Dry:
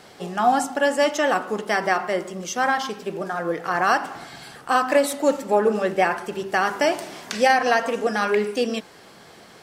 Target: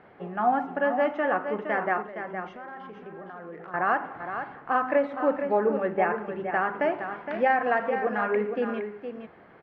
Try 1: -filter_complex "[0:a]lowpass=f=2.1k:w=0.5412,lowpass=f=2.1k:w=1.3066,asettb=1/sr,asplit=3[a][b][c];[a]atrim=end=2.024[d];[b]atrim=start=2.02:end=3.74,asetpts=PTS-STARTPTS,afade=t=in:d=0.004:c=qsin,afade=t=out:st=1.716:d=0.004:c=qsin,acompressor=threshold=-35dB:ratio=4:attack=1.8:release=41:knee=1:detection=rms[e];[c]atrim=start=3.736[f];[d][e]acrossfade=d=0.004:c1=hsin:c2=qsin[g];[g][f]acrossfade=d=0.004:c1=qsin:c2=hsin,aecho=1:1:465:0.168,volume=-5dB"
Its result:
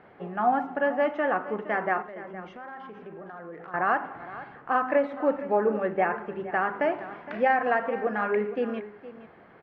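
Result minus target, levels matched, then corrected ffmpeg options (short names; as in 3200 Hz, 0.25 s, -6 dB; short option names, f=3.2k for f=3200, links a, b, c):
echo-to-direct -7 dB
-filter_complex "[0:a]lowpass=f=2.1k:w=0.5412,lowpass=f=2.1k:w=1.3066,asettb=1/sr,asplit=3[a][b][c];[a]atrim=end=2.024[d];[b]atrim=start=2.02:end=3.74,asetpts=PTS-STARTPTS,afade=t=in:d=0.004:c=qsin,afade=t=out:st=1.716:d=0.004:c=qsin,acompressor=threshold=-35dB:ratio=4:attack=1.8:release=41:knee=1:detection=rms[e];[c]atrim=start=3.736[f];[d][e]acrossfade=d=0.004:c1=hsin:c2=qsin[g];[g][f]acrossfade=d=0.004:c1=qsin:c2=hsin,aecho=1:1:465:0.376,volume=-5dB"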